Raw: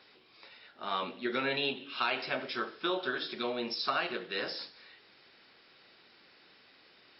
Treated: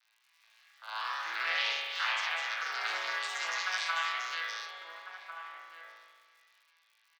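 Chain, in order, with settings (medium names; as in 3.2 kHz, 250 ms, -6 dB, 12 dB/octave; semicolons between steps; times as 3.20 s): vocoder on a broken chord bare fifth, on A2, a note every 201 ms; crackle 120 per s -51 dBFS; gate -54 dBFS, range -9 dB; ever faster or slower copies 200 ms, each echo +2 st, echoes 3; Bessel high-pass 1.8 kHz, order 4; echo from a far wall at 240 m, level -7 dB; spring tank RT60 1.7 s, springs 36 ms, chirp 55 ms, DRR -1.5 dB; trim +6 dB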